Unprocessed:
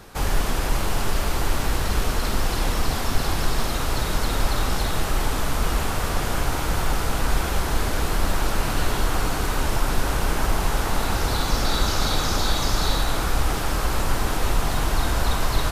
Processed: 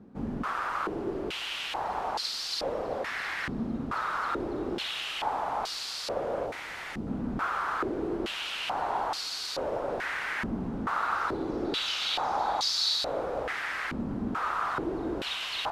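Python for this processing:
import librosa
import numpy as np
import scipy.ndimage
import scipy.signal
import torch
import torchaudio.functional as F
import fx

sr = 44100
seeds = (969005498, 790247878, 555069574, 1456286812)

y = fx.peak_eq(x, sr, hz=1500.0, db=-8.5, octaves=1.4, at=(6.46, 7.07))
y = fx.filter_held_bandpass(y, sr, hz=2.3, low_hz=230.0, high_hz=4500.0)
y = F.gain(torch.from_numpy(y), 6.0).numpy()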